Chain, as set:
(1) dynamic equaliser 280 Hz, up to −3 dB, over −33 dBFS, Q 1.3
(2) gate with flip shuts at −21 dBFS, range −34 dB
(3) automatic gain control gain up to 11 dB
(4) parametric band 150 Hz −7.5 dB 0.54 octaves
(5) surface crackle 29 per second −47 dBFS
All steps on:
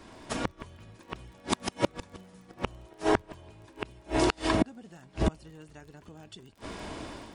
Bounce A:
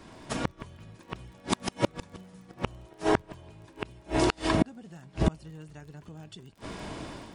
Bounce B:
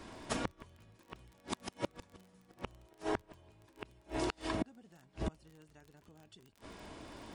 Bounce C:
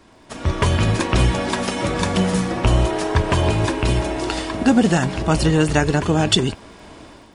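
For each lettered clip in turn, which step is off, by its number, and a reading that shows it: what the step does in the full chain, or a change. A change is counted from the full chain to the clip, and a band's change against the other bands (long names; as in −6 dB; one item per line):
4, 125 Hz band +3.0 dB
3, 8 kHz band +1.5 dB
2, change in momentary loudness spread −15 LU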